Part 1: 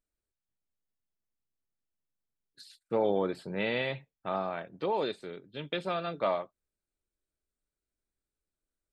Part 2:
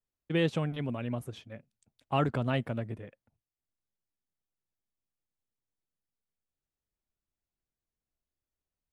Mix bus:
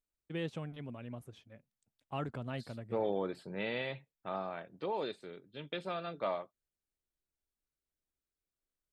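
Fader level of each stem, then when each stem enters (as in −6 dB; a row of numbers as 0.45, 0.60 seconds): −6.0, −10.5 decibels; 0.00, 0.00 seconds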